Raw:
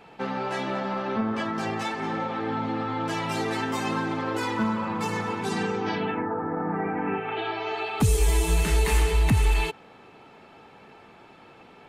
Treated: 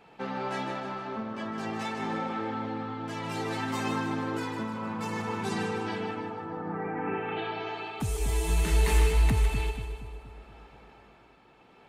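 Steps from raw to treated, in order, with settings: tremolo triangle 0.59 Hz, depth 55%; on a send: two-band feedback delay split 1 kHz, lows 236 ms, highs 154 ms, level -8 dB; on the sum: trim -3.5 dB

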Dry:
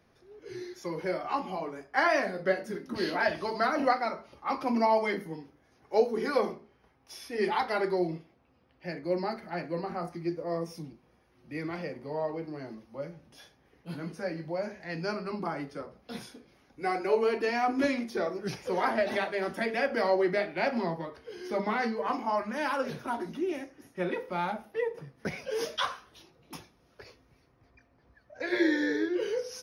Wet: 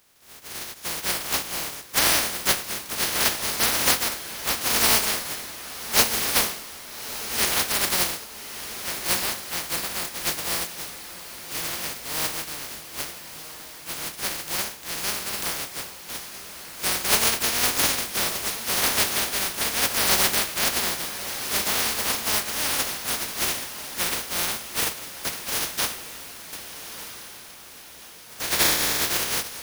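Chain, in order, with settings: spectral contrast reduction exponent 0.1; echo that smears into a reverb 1283 ms, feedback 49%, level -11 dB; trim +5.5 dB

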